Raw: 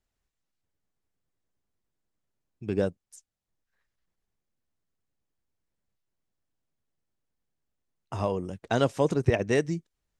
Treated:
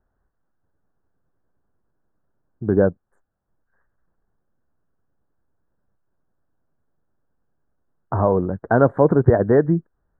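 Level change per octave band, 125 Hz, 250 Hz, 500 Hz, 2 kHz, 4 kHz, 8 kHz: +9.5 dB, +10.0 dB, +10.0 dB, +5.0 dB, below −30 dB, below −30 dB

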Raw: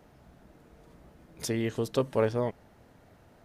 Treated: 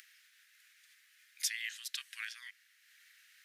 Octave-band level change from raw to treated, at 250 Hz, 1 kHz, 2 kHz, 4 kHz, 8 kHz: below −40 dB, −24.0 dB, +1.5 dB, +3.0 dB, +3.0 dB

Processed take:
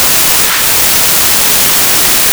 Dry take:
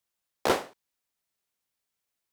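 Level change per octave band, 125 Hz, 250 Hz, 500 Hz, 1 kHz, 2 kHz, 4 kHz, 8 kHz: +25.5, +17.5, +13.0, +19.0, +27.5, +32.5, +40.0 decibels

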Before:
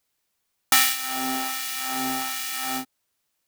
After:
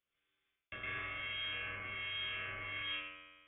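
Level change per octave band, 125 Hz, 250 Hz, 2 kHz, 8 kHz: −2.0 dB, −25.0 dB, −10.0 dB, below −40 dB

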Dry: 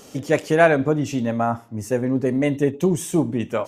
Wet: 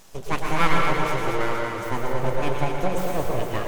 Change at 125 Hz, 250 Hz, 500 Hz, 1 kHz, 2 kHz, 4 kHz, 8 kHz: −4.0, −10.0, −6.5, +1.5, −1.5, +3.5, −5.5 decibels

